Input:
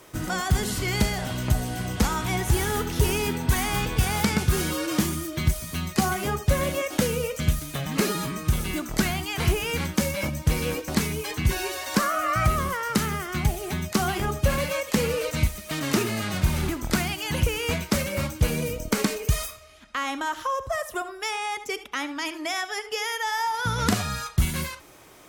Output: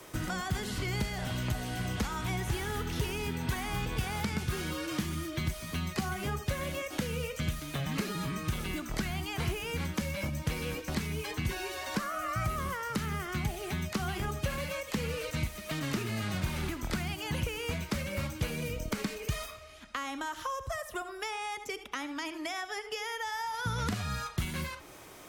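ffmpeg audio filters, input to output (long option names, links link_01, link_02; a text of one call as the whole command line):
ffmpeg -i in.wav -filter_complex "[0:a]acrossover=split=170|1300|4500[link_01][link_02][link_03][link_04];[link_01]acompressor=threshold=-34dB:ratio=4[link_05];[link_02]acompressor=threshold=-39dB:ratio=4[link_06];[link_03]acompressor=threshold=-41dB:ratio=4[link_07];[link_04]acompressor=threshold=-49dB:ratio=4[link_08];[link_05][link_06][link_07][link_08]amix=inputs=4:normalize=0" out.wav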